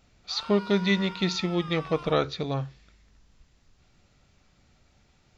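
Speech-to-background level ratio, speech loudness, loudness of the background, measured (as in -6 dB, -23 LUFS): 15.5 dB, -27.0 LUFS, -42.5 LUFS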